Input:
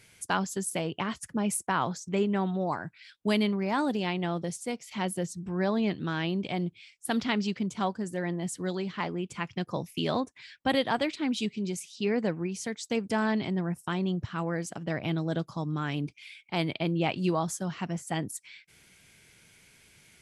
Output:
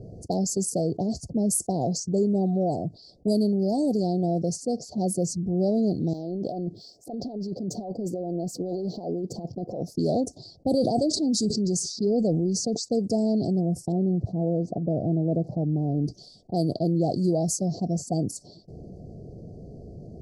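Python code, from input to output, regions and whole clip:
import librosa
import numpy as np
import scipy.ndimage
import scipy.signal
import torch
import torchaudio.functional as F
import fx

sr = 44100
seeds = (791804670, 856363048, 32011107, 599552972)

y = fx.chain(x, sr, fx.highpass(hz=480.0, slope=6),
    fx.over_compress(threshold_db=-42.0, ratio=-1.0),
    fx.resample_bad(factor=2, down='filtered', up='zero_stuff'), at=(6.13, 9.94))
y = fx.chain(y, sr, fx.lowpass(hz=10000.0, slope=24),
    fx.sustainer(db_per_s=42.0), at=(10.7, 12.82))
y = fx.chain(y, sr, fx.crossing_spikes(level_db=-35.0),
    fx.lowpass(hz=1100.0, slope=12), at=(13.92, 16.04))
y = fx.env_lowpass(y, sr, base_hz=660.0, full_db=-25.5)
y = scipy.signal.sosfilt(scipy.signal.cheby1(5, 1.0, [720.0, 4500.0], 'bandstop', fs=sr, output='sos'), y)
y = fx.env_flatten(y, sr, amount_pct=50)
y = F.gain(torch.from_numpy(y), 3.5).numpy()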